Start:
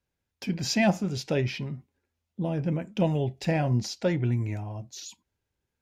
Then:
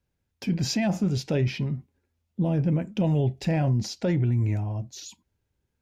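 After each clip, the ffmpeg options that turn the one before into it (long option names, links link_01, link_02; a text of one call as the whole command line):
ffmpeg -i in.wav -af "lowshelf=frequency=350:gain=7.5,alimiter=limit=-17dB:level=0:latency=1:release=21" out.wav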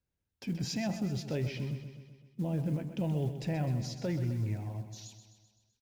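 ffmpeg -i in.wav -filter_complex "[0:a]acrusher=bits=8:mode=log:mix=0:aa=0.000001,asplit=2[link_01][link_02];[link_02]aecho=0:1:128|256|384|512|640|768|896:0.299|0.176|0.104|0.0613|0.0362|0.0213|0.0126[link_03];[link_01][link_03]amix=inputs=2:normalize=0,volume=-9dB" out.wav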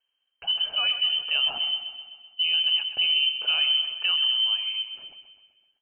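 ffmpeg -i in.wav -af "lowpass=frequency=2700:width_type=q:width=0.5098,lowpass=frequency=2700:width_type=q:width=0.6013,lowpass=frequency=2700:width_type=q:width=0.9,lowpass=frequency=2700:width_type=q:width=2.563,afreqshift=-3200,volume=8.5dB" out.wav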